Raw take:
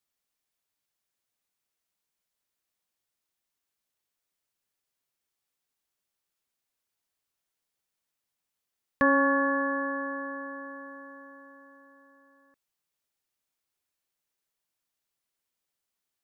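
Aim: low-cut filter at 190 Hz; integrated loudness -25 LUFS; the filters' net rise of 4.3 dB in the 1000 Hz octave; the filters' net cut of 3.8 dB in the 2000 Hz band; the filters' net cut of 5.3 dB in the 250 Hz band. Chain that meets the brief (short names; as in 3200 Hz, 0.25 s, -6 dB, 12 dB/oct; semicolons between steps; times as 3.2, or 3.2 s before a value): HPF 190 Hz; bell 250 Hz -5 dB; bell 1000 Hz +7 dB; bell 2000 Hz -7 dB; gain +1.5 dB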